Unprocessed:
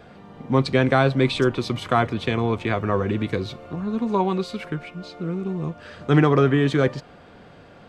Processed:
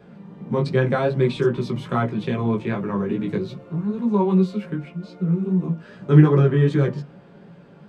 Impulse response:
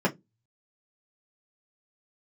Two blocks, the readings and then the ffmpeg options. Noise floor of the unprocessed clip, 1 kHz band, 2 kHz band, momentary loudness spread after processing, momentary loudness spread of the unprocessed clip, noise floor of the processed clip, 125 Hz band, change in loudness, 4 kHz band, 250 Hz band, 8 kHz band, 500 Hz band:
-48 dBFS, -4.5 dB, -5.5 dB, 13 LU, 14 LU, -47 dBFS, +4.0 dB, +1.0 dB, -8.0 dB, +2.0 dB, no reading, 0.0 dB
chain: -filter_complex "[0:a]flanger=delay=15.5:depth=3.8:speed=2.5,asplit=2[s0][s1];[1:a]atrim=start_sample=2205,lowshelf=f=190:g=11.5[s2];[s1][s2]afir=irnorm=-1:irlink=0,volume=0.188[s3];[s0][s3]amix=inputs=2:normalize=0,volume=0.531"

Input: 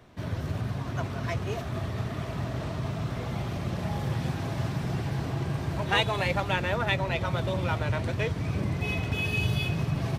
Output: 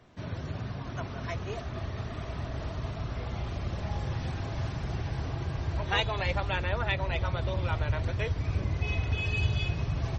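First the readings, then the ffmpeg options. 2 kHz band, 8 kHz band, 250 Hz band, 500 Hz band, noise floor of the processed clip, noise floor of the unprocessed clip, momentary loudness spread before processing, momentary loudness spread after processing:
-3.5 dB, -6.5 dB, -6.5 dB, -4.0 dB, -39 dBFS, -35 dBFS, 6 LU, 8 LU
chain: -af "asubboost=boost=10.5:cutoff=51,volume=0.708" -ar 48000 -c:a libmp3lame -b:a 32k

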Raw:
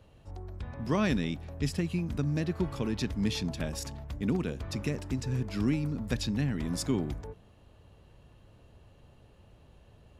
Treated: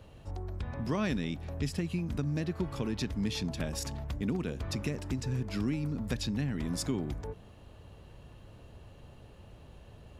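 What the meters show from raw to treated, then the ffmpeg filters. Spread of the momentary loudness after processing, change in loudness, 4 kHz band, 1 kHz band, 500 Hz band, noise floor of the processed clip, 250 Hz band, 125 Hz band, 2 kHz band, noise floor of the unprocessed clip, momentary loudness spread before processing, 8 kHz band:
21 LU, -2.5 dB, -1.0 dB, -2.5 dB, -2.5 dB, -54 dBFS, -2.5 dB, -2.0 dB, -2.5 dB, -59 dBFS, 11 LU, -0.5 dB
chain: -af "acompressor=threshold=0.01:ratio=2,volume=1.78"

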